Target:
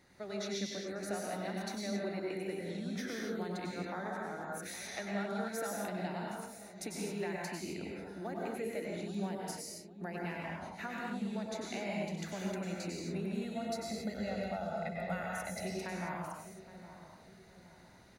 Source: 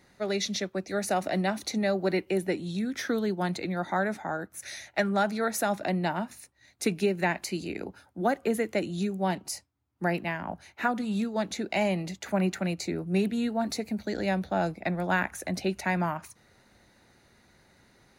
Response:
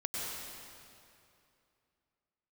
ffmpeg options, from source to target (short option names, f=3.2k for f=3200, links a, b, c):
-filter_complex "[0:a]asettb=1/sr,asplit=3[a][b][c];[a]atrim=end=13.414[d];[b]atrim=start=13.41:end=15.63,asetpts=PTS-STARTPTS,afade=t=in:d=0.004:c=qsin,afade=t=out:st=2.216:d=0.004:c=qsin,aecho=1:1:1.5:0.85,atrim=end_sample=97902[e];[c]atrim=start=15.626[f];[d][e]acrossfade=d=0.004:c1=hsin:c2=qsin[g];[g][f]acrossfade=d=0.004:c1=qsin:c2=hsin,acompressor=threshold=-40dB:ratio=2.5,asplit=2[h][i];[i]adelay=816,lowpass=f=1.1k:p=1,volume=-12.5dB,asplit=2[j][k];[k]adelay=816,lowpass=f=1.1k:p=1,volume=0.46,asplit=2[l][m];[m]adelay=816,lowpass=f=1.1k:p=1,volume=0.46,asplit=2[n][o];[o]adelay=816,lowpass=f=1.1k:p=1,volume=0.46,asplit=2[p][q];[q]adelay=816,lowpass=f=1.1k:p=1,volume=0.46[r];[h][j][l][n][p][r]amix=inputs=6:normalize=0[s];[1:a]atrim=start_sample=2205,afade=t=out:st=0.33:d=0.01,atrim=end_sample=14994[t];[s][t]afir=irnorm=-1:irlink=0,volume=-3dB"